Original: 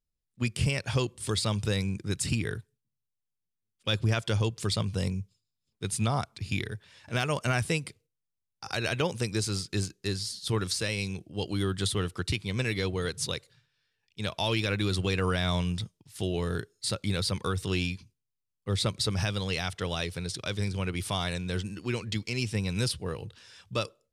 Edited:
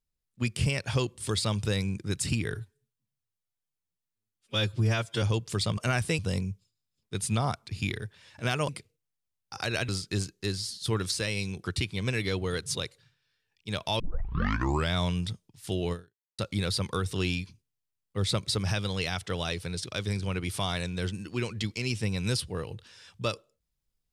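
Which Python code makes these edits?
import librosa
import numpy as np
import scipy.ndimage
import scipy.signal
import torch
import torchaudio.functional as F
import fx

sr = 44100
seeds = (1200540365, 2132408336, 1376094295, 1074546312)

y = fx.edit(x, sr, fx.stretch_span(start_s=2.54, length_s=1.79, factor=1.5),
    fx.move(start_s=7.38, length_s=0.41, to_s=4.88),
    fx.cut(start_s=8.99, length_s=0.51),
    fx.cut(start_s=11.25, length_s=0.9),
    fx.tape_start(start_s=14.51, length_s=0.94),
    fx.fade_out_span(start_s=16.44, length_s=0.46, curve='exp'), tone=tone)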